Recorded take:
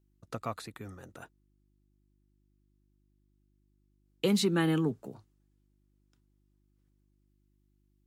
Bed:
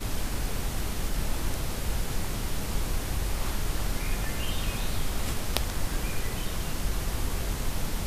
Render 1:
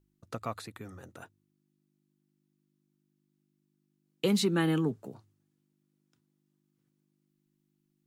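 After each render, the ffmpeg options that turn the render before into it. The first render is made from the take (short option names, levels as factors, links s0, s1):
-af "bandreject=f=50:t=h:w=4,bandreject=f=100:t=h:w=4"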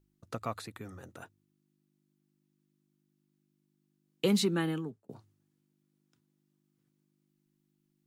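-filter_complex "[0:a]asplit=2[s0][s1];[s0]atrim=end=5.09,asetpts=PTS-STARTPTS,afade=t=out:st=4.37:d=0.72[s2];[s1]atrim=start=5.09,asetpts=PTS-STARTPTS,afade=t=in:d=0.004:c=hsin[s3];[s2][s3]concat=n=2:v=0:a=1"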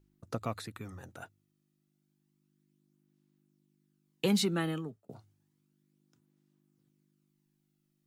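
-af "aphaser=in_gain=1:out_gain=1:delay=1.6:decay=0.35:speed=0.31:type=sinusoidal"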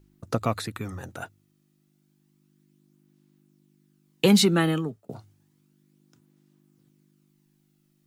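-af "volume=3.16"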